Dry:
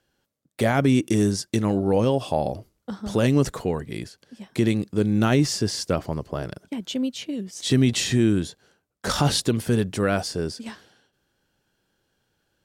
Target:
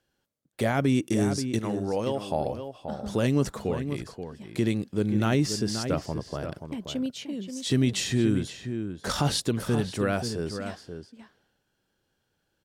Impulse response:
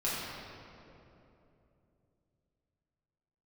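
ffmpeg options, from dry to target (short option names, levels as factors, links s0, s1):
-filter_complex "[0:a]asettb=1/sr,asplit=3[s0][s1][s2];[s0]atrim=end=1.594[s3];[s1]atrim=start=1.59:end=2.3,asetpts=PTS-STARTPTS,afade=t=in:d=0.004:c=qsin,afade=t=out:st=0.706:d=0.004:c=qsin,lowshelf=f=280:g=-10[s4];[s2]atrim=start=2.296[s5];[s3][s4]acrossfade=d=0.004:c1=hsin:c2=qsin[s6];[s6][s5]acrossfade=d=0.004:c1=qsin:c2=hsin,asplit=2[s7][s8];[s8]adelay=530.6,volume=0.398,highshelf=f=4000:g=-11.9[s9];[s7][s9]amix=inputs=2:normalize=0,volume=0.596"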